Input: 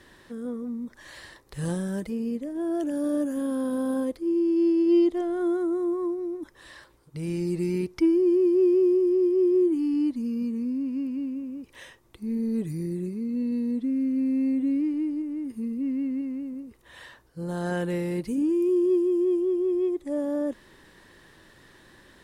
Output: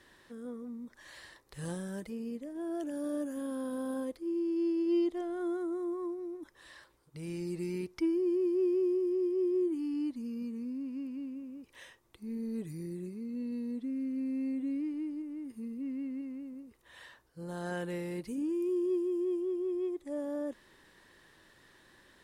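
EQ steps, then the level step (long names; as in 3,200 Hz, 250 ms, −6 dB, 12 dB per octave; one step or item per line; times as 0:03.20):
low-shelf EQ 420 Hz −5 dB
−6.0 dB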